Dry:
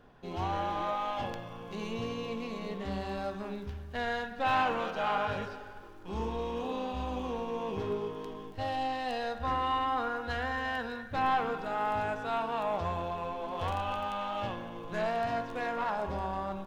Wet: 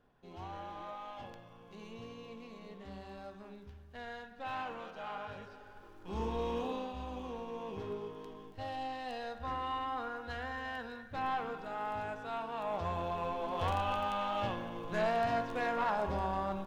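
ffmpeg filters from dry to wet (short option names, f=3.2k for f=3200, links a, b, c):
-af "volume=7dB,afade=t=in:st=5.45:d=1.07:silence=0.251189,afade=t=out:st=6.52:d=0.41:silence=0.446684,afade=t=in:st=12.53:d=0.74:silence=0.446684"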